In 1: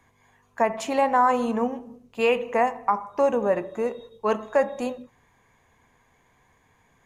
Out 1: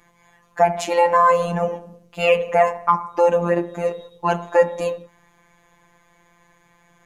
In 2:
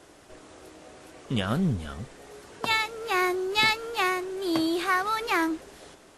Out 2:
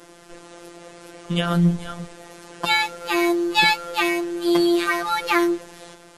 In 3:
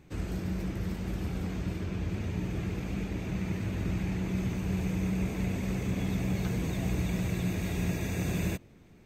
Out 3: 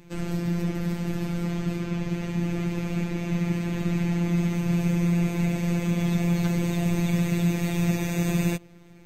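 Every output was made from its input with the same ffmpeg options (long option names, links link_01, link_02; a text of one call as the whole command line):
ffmpeg -i in.wav -af "afftfilt=real='hypot(re,im)*cos(PI*b)':imag='0':win_size=1024:overlap=0.75,acontrast=33,volume=4dB" out.wav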